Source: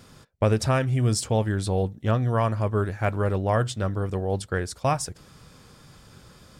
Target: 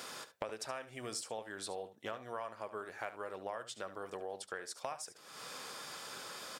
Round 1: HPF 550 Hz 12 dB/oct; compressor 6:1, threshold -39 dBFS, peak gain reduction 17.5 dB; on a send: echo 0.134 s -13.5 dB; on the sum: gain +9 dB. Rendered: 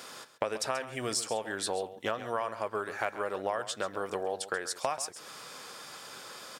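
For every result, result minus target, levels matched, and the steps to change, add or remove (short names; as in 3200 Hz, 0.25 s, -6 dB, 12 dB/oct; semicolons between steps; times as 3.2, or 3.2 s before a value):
echo 62 ms late; compressor: peak gain reduction -9.5 dB
change: echo 72 ms -13.5 dB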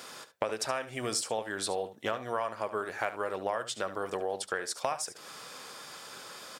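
compressor: peak gain reduction -9.5 dB
change: compressor 6:1, threshold -50.5 dBFS, peak gain reduction 27 dB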